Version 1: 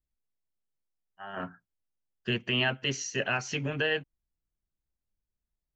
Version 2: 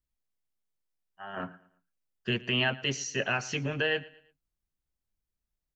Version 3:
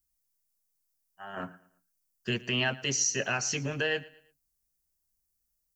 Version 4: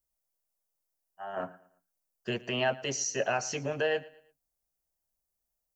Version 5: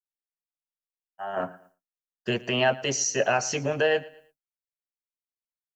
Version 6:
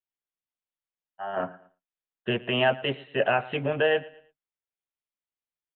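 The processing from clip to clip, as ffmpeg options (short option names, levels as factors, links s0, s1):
-af "aecho=1:1:113|226|339:0.0944|0.0349|0.0129"
-af "aexciter=amount=3.6:drive=6.4:freq=4800,volume=0.891"
-af "equalizer=f=650:t=o:w=1.4:g=12.5,volume=0.531"
-af "agate=range=0.0224:threshold=0.00126:ratio=3:detection=peak,volume=2"
-af "aresample=8000,aresample=44100"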